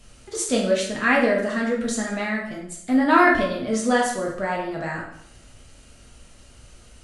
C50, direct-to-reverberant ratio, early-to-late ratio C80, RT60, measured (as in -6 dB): 4.0 dB, -3.0 dB, 8.0 dB, 0.70 s